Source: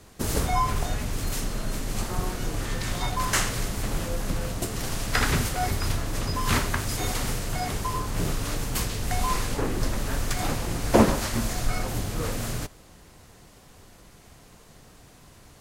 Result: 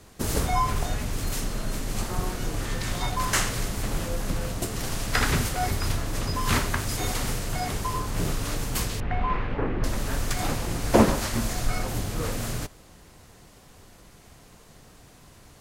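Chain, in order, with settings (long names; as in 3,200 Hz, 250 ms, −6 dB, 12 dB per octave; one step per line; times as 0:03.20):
0:09.00–0:09.84: low-pass filter 2,600 Hz 24 dB per octave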